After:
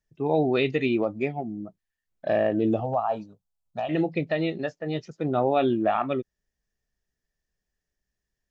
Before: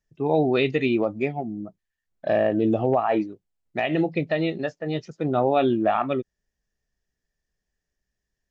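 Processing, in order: 2.8–3.89 fixed phaser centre 850 Hz, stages 4; gain -2 dB

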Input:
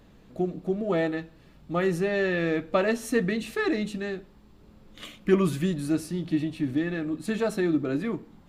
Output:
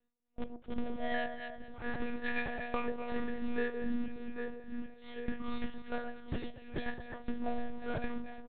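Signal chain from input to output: metallic resonator 210 Hz, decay 0.64 s, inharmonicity 0.008; in parallel at -4 dB: Schmitt trigger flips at -43.5 dBFS; on the sum: feedback echo 0.781 s, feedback 57%, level -19 dB; gate -57 dBFS, range -22 dB; tremolo 2.5 Hz, depth 86%; on a send: echo with dull and thin repeats by turns 0.113 s, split 1100 Hz, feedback 59%, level -9 dB; on the sum: monotone LPC vocoder at 8 kHz 240 Hz; compressor 8:1, threshold -45 dBFS, peak gain reduction 14 dB; gain +15 dB

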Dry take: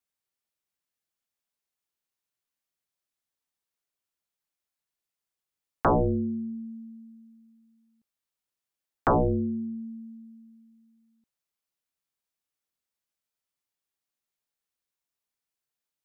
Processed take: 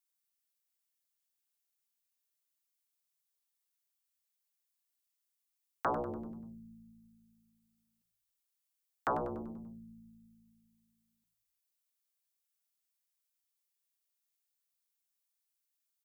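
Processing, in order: tilt +3.5 dB/oct; frequency-shifting echo 97 ms, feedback 53%, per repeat -55 Hz, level -11 dB; gain -8.5 dB

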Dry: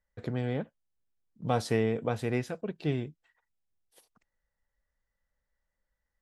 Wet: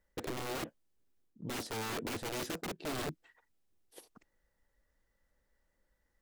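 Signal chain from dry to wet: reverse; compressor 16:1, threshold -36 dBFS, peak gain reduction 16 dB; reverse; wrapped overs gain 40 dB; bell 330 Hz +9 dB 1.1 oct; gain +5 dB

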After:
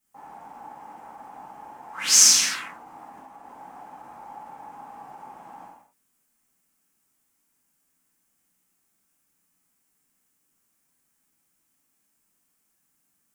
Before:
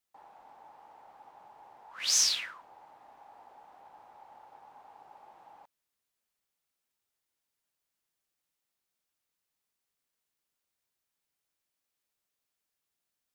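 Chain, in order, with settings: graphic EQ 250/500/4000/8000 Hz +10/-6/-11/+5 dB; 2.59–3.43 negative-ratio compressor -58 dBFS, ratio -0.5; non-linear reverb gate 0.29 s falling, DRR -7.5 dB; ending taper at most 130 dB/s; gain +5 dB

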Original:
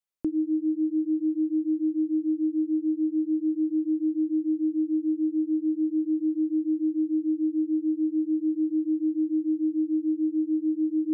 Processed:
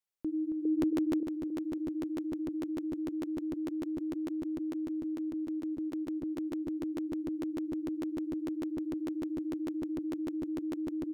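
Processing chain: limiter -26.5 dBFS, peak gain reduction 7 dB; 0.65–1.23 synth low-pass 440 Hz, resonance Q 4.9; feedback echo 0.274 s, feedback 44%, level -7 dB; crackling interface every 0.15 s, samples 512, repeat, from 0.81; gain -2 dB

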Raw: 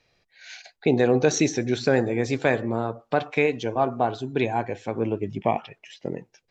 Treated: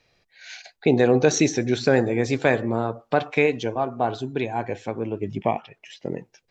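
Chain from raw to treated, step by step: 3.59–6.1 tremolo 1.7 Hz, depth 45%; gain +2 dB

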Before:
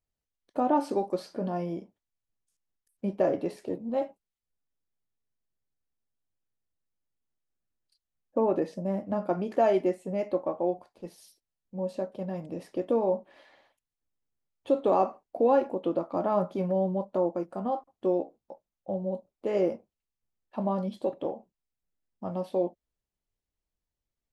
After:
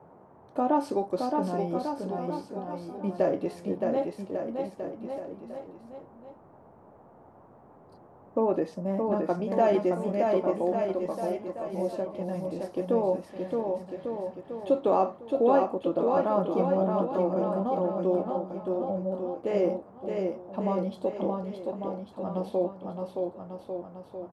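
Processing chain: bouncing-ball echo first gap 0.62 s, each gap 0.85×, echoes 5; band noise 76–910 Hz -54 dBFS

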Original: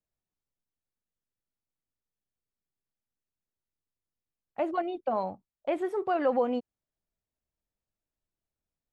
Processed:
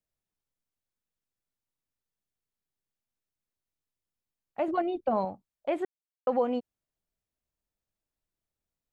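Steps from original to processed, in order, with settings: 4.68–5.25 low shelf 250 Hz +10.5 dB; 5.85–6.27 mute

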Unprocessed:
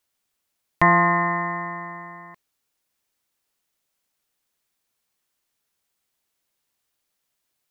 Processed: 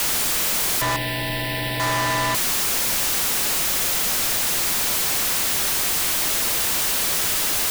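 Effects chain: infinite clipping; frequency shift -48 Hz; 0.96–1.8 fixed phaser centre 2900 Hz, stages 4; gain +7.5 dB

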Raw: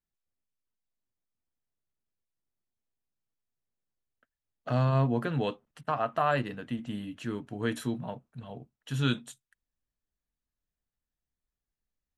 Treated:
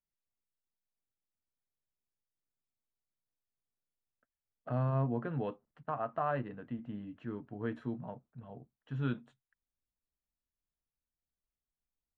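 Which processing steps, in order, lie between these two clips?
LPF 1500 Hz 12 dB/oct; gain -6 dB

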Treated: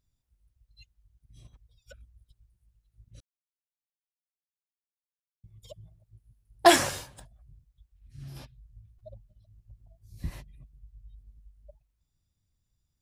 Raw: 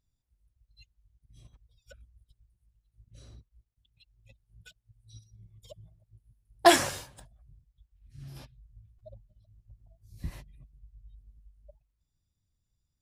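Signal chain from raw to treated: in parallel at -11.5 dB: soft clip -19 dBFS, distortion -8 dB; 3.2–5.44 on the sum: requantised 6-bit, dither none

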